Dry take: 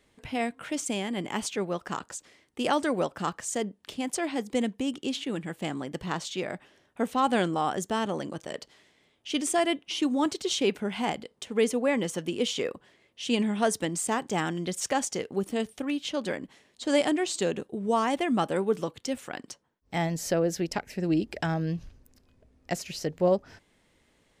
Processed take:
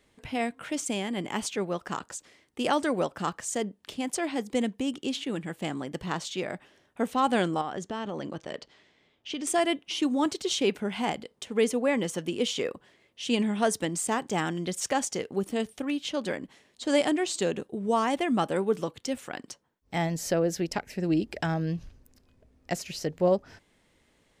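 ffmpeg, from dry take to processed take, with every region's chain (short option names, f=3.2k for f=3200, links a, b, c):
-filter_complex "[0:a]asettb=1/sr,asplit=3[a][b][c];[a]atrim=end=7.614[d];[b]atrim=start=7.61:end=9.47,asetpts=PTS-STARTPTS,afade=t=in:d=0.004:c=qsin,afade=t=out:st=1.856:d=0.004:c=qsin,lowpass=5.2k,acompressor=threshold=-29dB:ratio=6:attack=3.2:release=140:knee=1:detection=peak[e];[c]atrim=start=9.466[f];[d][e]acrossfade=d=0.004:c1=hsin:c2=qsin[g];[g][f]acrossfade=d=0.004:c1=qsin:c2=hsin"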